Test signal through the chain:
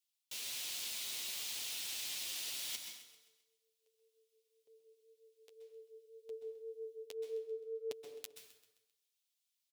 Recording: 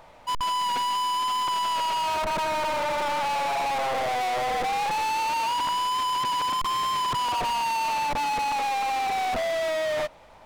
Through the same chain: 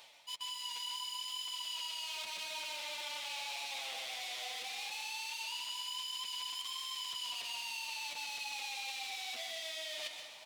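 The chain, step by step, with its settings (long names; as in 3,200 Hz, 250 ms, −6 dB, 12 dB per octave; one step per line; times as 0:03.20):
high-pass filter 790 Hz 6 dB per octave
high shelf with overshoot 2,100 Hz +13.5 dB, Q 1.5
reversed playback
downward compressor 6 to 1, threshold −34 dBFS
reversed playback
flanger 1.9 Hz, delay 6.6 ms, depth 3.8 ms, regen +15%
on a send: repeating echo 131 ms, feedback 47%, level −13.5 dB
on the sum: dense smooth reverb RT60 0.81 s, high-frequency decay 0.75×, pre-delay 115 ms, DRR 5 dB
level −3 dB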